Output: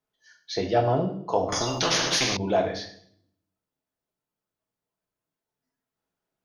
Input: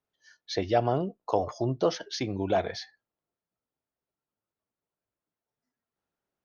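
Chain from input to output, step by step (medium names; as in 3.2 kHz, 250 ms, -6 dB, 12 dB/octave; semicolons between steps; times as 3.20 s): on a send at -1.5 dB: reverberation RT60 0.65 s, pre-delay 5 ms; 1.52–2.37 s: on the sum: spectrum-flattening compressor 4:1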